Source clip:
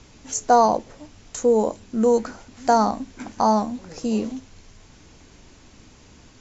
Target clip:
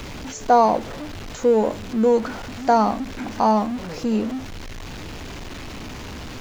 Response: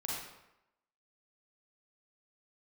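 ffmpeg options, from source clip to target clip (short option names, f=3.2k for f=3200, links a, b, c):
-filter_complex "[0:a]aeval=exprs='val(0)+0.5*0.0376*sgn(val(0))':c=same,acrossover=split=4800[a][b];[b]acompressor=threshold=-51dB:ratio=4:attack=1:release=60[c];[a][c]amix=inputs=2:normalize=0"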